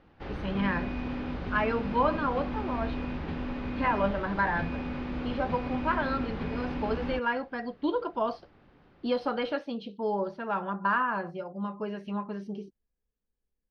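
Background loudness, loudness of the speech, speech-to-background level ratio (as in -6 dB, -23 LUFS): -35.5 LUFS, -31.5 LUFS, 4.0 dB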